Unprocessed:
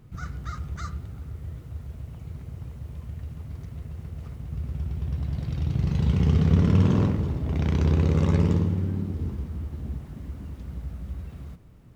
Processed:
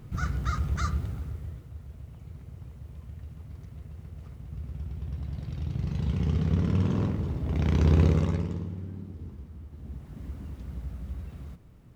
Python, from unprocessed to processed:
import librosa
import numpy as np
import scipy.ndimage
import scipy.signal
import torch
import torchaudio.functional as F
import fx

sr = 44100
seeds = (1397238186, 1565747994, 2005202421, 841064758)

y = fx.gain(x, sr, db=fx.line((1.06, 5.0), (1.71, -6.0), (6.93, -6.0), (8.04, 1.5), (8.49, -11.0), (9.68, -11.0), (10.24, -2.0)))